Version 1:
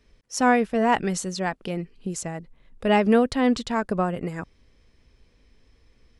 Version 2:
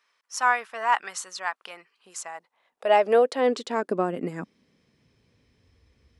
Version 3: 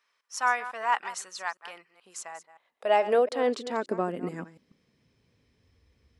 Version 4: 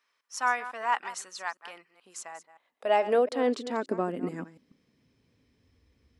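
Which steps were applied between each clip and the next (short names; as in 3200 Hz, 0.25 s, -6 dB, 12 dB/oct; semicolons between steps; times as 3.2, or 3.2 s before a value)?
high-pass sweep 1100 Hz -> 76 Hz, 2.15–5.9; gain -3 dB
reverse delay 0.143 s, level -13.5 dB; gain -3.5 dB
bell 270 Hz +6 dB 0.51 oct; gain -1.5 dB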